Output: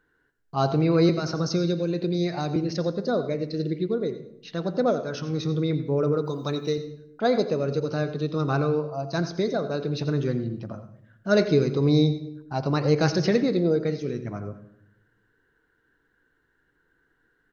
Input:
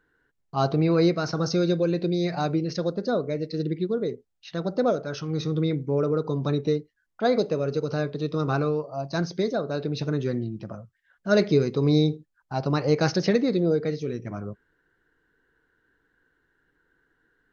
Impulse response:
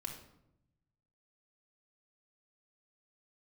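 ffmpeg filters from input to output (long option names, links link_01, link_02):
-filter_complex "[0:a]asettb=1/sr,asplit=3[link_01][link_02][link_03];[link_01]atrim=end=1.094[link_04];[link_02]atrim=start=1.09:end=2.56,asetpts=PTS-STARTPTS,afade=type=in:duration=0.004:curve=qsin,afade=type=out:start_time=1.466:duration=0.004:curve=qsin,acrossover=split=320|3000[link_05][link_06][link_07];[link_06]acompressor=threshold=-28dB:ratio=6[link_08];[link_05][link_08][link_07]amix=inputs=3:normalize=0[link_09];[link_03]atrim=start=2.556[link_10];[link_04][link_09]acrossfade=duration=0.004:curve1=hsin:curve2=qsin[link_11];[link_11][link_10]acrossfade=duration=0.004:curve1=qsin:curve2=hsin,asettb=1/sr,asplit=3[link_12][link_13][link_14];[link_12]atrim=end=6.244[link_15];[link_13]atrim=start=6.24:end=6.78,asetpts=PTS-STARTPTS,afade=type=in:duration=0.004:curve=qsin,afade=type=out:start_time=0.536:duration=0.004:curve=qsin,aemphasis=mode=production:type=bsi[link_16];[link_14]atrim=start=6.776[link_17];[link_15][link_16]acrossfade=duration=0.004:curve1=hsin:curve2=qsin[link_18];[link_18][link_17]acrossfade=duration=0.004:curve1=qsin:curve2=hsin,aecho=1:1:102|204|306:0.126|0.0378|0.0113,asplit=2[link_19][link_20];[1:a]atrim=start_sample=2205,adelay=86[link_21];[link_20][link_21]afir=irnorm=-1:irlink=0,volume=-10.5dB[link_22];[link_19][link_22]amix=inputs=2:normalize=0"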